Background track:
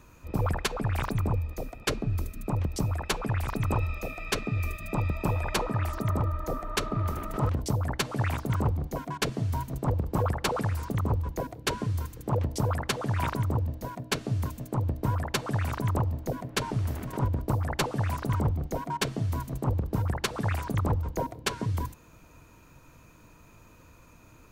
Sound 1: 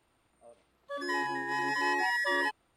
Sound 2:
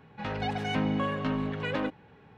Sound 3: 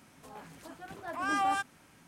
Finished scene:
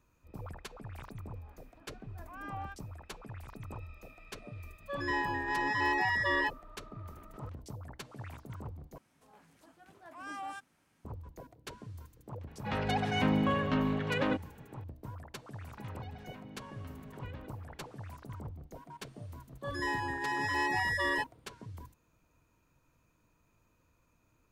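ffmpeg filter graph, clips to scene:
-filter_complex "[3:a]asplit=2[s0][s1];[1:a]asplit=2[s2][s3];[2:a]asplit=2[s4][s5];[0:a]volume=0.141[s6];[s0]highpass=120,lowpass=2400[s7];[s2]lowpass=4700[s8];[s5]acompressor=threshold=0.00891:ratio=6:attack=3.2:release=140:knee=1:detection=peak[s9];[s6]asplit=2[s10][s11];[s10]atrim=end=8.984[s12];[s1]atrim=end=2.07,asetpts=PTS-STARTPTS,volume=0.237[s13];[s11]atrim=start=11.046[s14];[s7]atrim=end=2.07,asetpts=PTS-STARTPTS,volume=0.211,afade=t=in:d=0.004:c=hsin,afade=t=out:st=2.066:d=0.004:c=hsin,adelay=1120[s15];[s8]atrim=end=2.76,asetpts=PTS-STARTPTS,volume=0.944,afade=t=in:d=0.004:c=hsin,afade=t=out:st=2.756:d=0.004:c=hsin,adelay=3990[s16];[s4]atrim=end=2.37,asetpts=PTS-STARTPTS,afade=t=in:d=0.004:c=hsin,afade=t=out:st=2.366:d=0.004:c=hsin,adelay=12470[s17];[s9]atrim=end=2.37,asetpts=PTS-STARTPTS,volume=0.473,afade=t=in:d=0.004:c=hsin,afade=t=out:st=2.366:d=0.004:c=hsin,adelay=15600[s18];[s3]atrim=end=2.76,asetpts=PTS-STARTPTS,volume=0.794,afade=t=in:d=0.004:c=hsin,afade=t=out:st=2.756:d=0.004:c=hsin,adelay=18730[s19];[s12][s13]acrossfade=d=0.004:c1=hsin:c2=hsin[s20];[s20][s14]acrossfade=d=0.004:c1=hsin:c2=hsin[s21];[s21][s15][s16][s17][s18][s19]amix=inputs=6:normalize=0"

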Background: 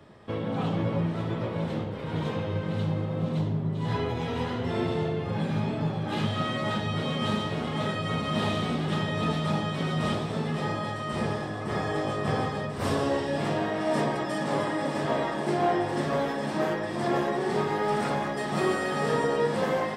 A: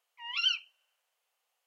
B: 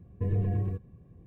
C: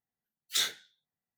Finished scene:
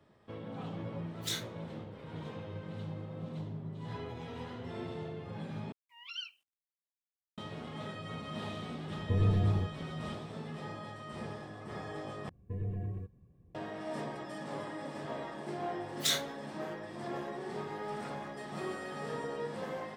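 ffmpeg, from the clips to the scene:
-filter_complex "[3:a]asplit=2[s0][s1];[2:a]asplit=2[s2][s3];[0:a]volume=0.224[s4];[1:a]acrusher=bits=10:mix=0:aa=0.000001[s5];[s4]asplit=3[s6][s7][s8];[s6]atrim=end=5.724[s9];[s5]atrim=end=1.66,asetpts=PTS-STARTPTS,volume=0.211[s10];[s7]atrim=start=7.376:end=12.294[s11];[s3]atrim=end=1.26,asetpts=PTS-STARTPTS,volume=0.355[s12];[s8]atrim=start=13.546[s13];[s0]atrim=end=1.37,asetpts=PTS-STARTPTS,volume=0.398,afade=t=in:d=0.004:c=hsin,afade=t=out:st=1.366:d=0.004:c=hsin,adelay=720[s14];[s2]atrim=end=1.26,asetpts=PTS-STARTPTS,afade=t=in:d=0.004:c=hsin,afade=t=out:st=1.256:d=0.004:c=hsin,adelay=8890[s15];[s1]atrim=end=1.37,asetpts=PTS-STARTPTS,volume=0.841,afade=t=in:d=0.004:c=hsin,afade=t=out:st=1.366:d=0.004:c=hsin,adelay=15500[s16];[s9][s10]acrossfade=d=0.004:c1=hsin:c2=hsin[s17];[s17][s11]acrossfade=d=0.004:c1=hsin:c2=hsin[s18];[s18][s12]acrossfade=d=0.004:c1=hsin:c2=hsin[s19];[s19][s13]acrossfade=d=0.004:c1=hsin:c2=hsin[s20];[s20][s14][s15][s16]amix=inputs=4:normalize=0"

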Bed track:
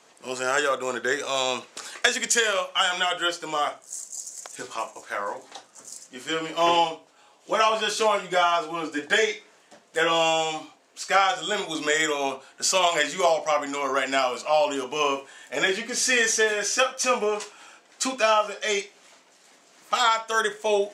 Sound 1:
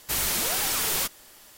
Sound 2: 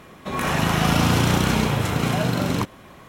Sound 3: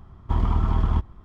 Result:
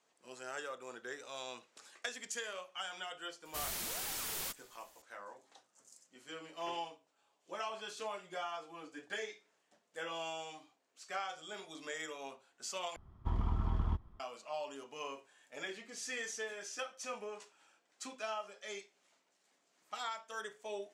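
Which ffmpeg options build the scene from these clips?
-filter_complex "[0:a]volume=0.1,asplit=2[s0][s1];[s0]atrim=end=12.964[s2];[3:a]atrim=end=1.24,asetpts=PTS-STARTPTS,volume=0.237[s3];[s1]atrim=start=14.196[s4];[1:a]atrim=end=1.57,asetpts=PTS-STARTPTS,volume=0.2,afade=t=in:d=0.004:c=hsin,afade=t=out:st=1.566:d=0.004:c=hsin,adelay=152145S[s5];[s2][s3]acrossfade=d=0.004:c1=hsin:c2=hsin[s6];[s6][s4]acrossfade=d=0.004:c1=hsin:c2=hsin[s7];[s7][s5]amix=inputs=2:normalize=0"

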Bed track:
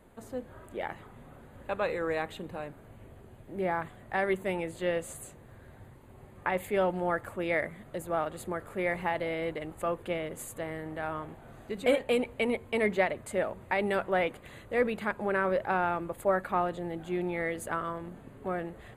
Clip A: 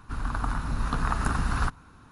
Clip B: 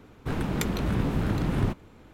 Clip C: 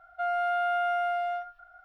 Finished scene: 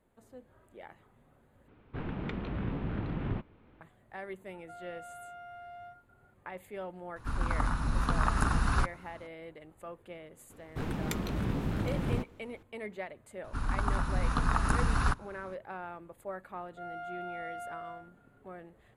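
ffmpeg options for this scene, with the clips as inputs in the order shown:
-filter_complex "[2:a]asplit=2[s0][s1];[3:a]asplit=2[s2][s3];[1:a]asplit=2[s4][s5];[0:a]volume=0.211[s6];[s0]lowpass=f=3200:w=0.5412,lowpass=f=3200:w=1.3066[s7];[s2]alimiter=level_in=1.78:limit=0.0631:level=0:latency=1:release=71,volume=0.562[s8];[s3]asplit=2[s9][s10];[s10]adelay=37,volume=0.631[s11];[s9][s11]amix=inputs=2:normalize=0[s12];[s6]asplit=2[s13][s14];[s13]atrim=end=1.684[s15];[s7]atrim=end=2.13,asetpts=PTS-STARTPTS,volume=0.376[s16];[s14]atrim=start=3.806[s17];[s8]atrim=end=1.84,asetpts=PTS-STARTPTS,volume=0.2,afade=t=in:d=0.004:c=hsin,afade=t=out:st=1.836:d=0.004:c=hsin,adelay=4500[s18];[s4]atrim=end=2.11,asetpts=PTS-STARTPTS,volume=0.841,afade=t=in:d=0.004:c=hsin,afade=t=out:st=2.106:d=0.004:c=hsin,adelay=7160[s19];[s1]atrim=end=2.13,asetpts=PTS-STARTPTS,volume=0.501,afade=t=in:d=0.004:c=hsin,afade=t=out:st=2.126:d=0.004:c=hsin,adelay=463050S[s20];[s5]atrim=end=2.11,asetpts=PTS-STARTPTS,volume=0.841,afade=t=in:d=0.004:c=hsin,afade=t=out:st=2.106:d=0.004:c=hsin,adelay=13440[s21];[s12]atrim=end=1.84,asetpts=PTS-STARTPTS,volume=0.126,afade=t=in:d=0.004:c=hsin,afade=t=out:st=1.836:d=0.004:c=hsin,adelay=16580[s22];[s15][s16]acrossfade=d=0.004:c1=hsin:c2=hsin[s23];[s23][s17]acrossfade=d=0.004:c1=hsin:c2=hsin[s24];[s24][s18][s19][s20][s21][s22]amix=inputs=6:normalize=0"

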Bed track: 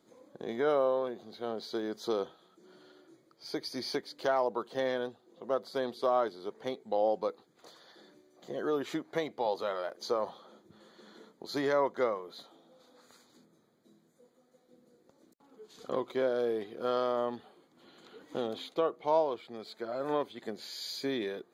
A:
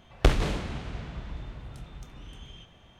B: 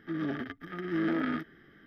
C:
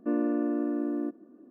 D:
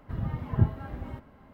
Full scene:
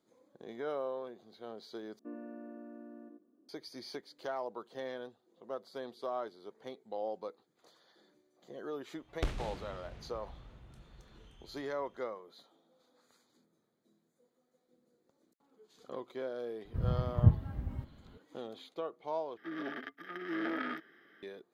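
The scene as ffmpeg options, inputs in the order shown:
-filter_complex "[0:a]volume=0.335[s0];[3:a]aecho=1:1:87:0.501[s1];[4:a]bass=f=250:g=11,treble=f=4000:g=6[s2];[2:a]highpass=400[s3];[s0]asplit=3[s4][s5][s6];[s4]atrim=end=1.994[s7];[s1]atrim=end=1.5,asetpts=PTS-STARTPTS,volume=0.141[s8];[s5]atrim=start=3.486:end=19.374[s9];[s3]atrim=end=1.86,asetpts=PTS-STARTPTS,volume=0.794[s10];[s6]atrim=start=21.226[s11];[1:a]atrim=end=2.99,asetpts=PTS-STARTPTS,volume=0.211,afade=t=in:d=0.004:c=hsin,afade=t=out:st=2.986:d=0.004:c=hsin,adelay=396018S[s12];[s2]atrim=end=1.53,asetpts=PTS-STARTPTS,volume=0.299,afade=t=in:d=0.004:c=hsin,afade=t=out:st=1.526:d=0.004:c=hsin,adelay=16650[s13];[s7][s8]acrossfade=d=0.004:c1=hsin:c2=hsin[s14];[s14][s9]acrossfade=d=0.004:c1=hsin:c2=hsin[s15];[s15][s10]acrossfade=d=0.004:c1=hsin:c2=hsin[s16];[s16][s11]acrossfade=d=0.004:c1=hsin:c2=hsin[s17];[s17][s12][s13]amix=inputs=3:normalize=0"

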